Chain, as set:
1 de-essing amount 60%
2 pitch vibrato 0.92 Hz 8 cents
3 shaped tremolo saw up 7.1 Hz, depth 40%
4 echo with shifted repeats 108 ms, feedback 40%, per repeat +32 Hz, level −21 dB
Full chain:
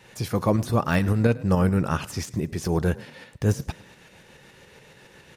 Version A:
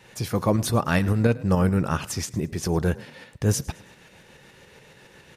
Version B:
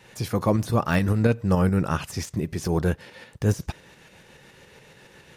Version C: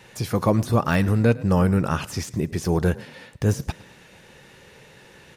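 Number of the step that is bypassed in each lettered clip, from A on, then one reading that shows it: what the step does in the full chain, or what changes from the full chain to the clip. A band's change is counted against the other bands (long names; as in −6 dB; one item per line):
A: 1, 8 kHz band +6.5 dB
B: 4, change in momentary loudness spread −1 LU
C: 3, change in integrated loudness +2.0 LU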